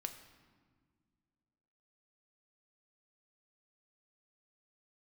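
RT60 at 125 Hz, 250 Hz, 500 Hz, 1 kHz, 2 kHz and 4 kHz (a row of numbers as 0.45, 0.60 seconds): 2.5, 2.6, 1.9, 1.6, 1.3, 1.1 seconds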